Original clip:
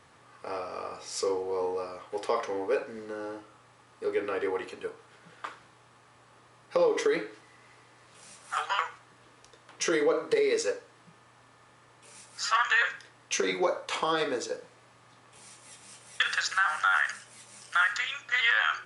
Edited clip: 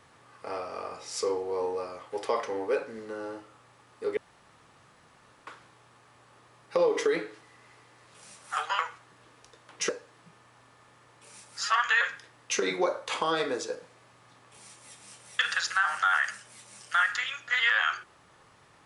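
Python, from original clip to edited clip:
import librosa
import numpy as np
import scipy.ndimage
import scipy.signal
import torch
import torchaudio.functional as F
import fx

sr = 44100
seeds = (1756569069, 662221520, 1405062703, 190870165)

y = fx.edit(x, sr, fx.room_tone_fill(start_s=4.17, length_s=1.3),
    fx.cut(start_s=9.89, length_s=0.81), tone=tone)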